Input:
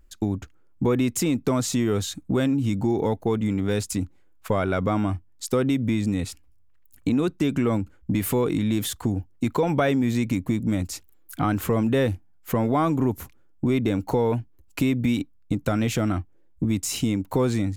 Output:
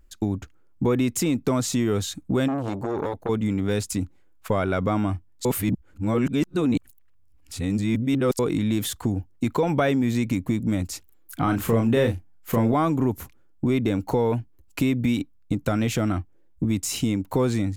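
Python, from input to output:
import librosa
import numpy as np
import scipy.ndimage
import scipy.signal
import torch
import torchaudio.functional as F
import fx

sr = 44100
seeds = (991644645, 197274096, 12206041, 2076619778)

y = fx.transformer_sat(x, sr, knee_hz=810.0, at=(2.48, 3.29))
y = fx.doubler(y, sr, ms=35.0, db=-6, at=(11.43, 12.74))
y = fx.edit(y, sr, fx.reverse_span(start_s=5.45, length_s=2.94), tone=tone)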